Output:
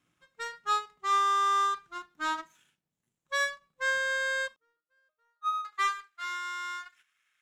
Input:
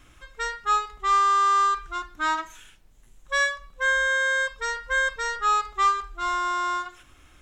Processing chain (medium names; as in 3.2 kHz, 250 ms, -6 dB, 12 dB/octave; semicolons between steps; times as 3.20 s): high-pass sweep 160 Hz -> 1.8 kHz, 4.29–5.88 s; 4.56–5.65 s: pitch-class resonator D#, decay 0.25 s; power-law waveshaper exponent 1.4; trim -4 dB